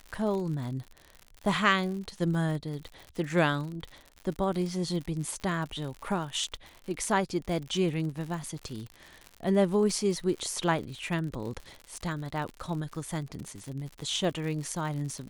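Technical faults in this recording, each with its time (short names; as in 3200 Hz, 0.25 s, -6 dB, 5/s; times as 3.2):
crackle 77/s -36 dBFS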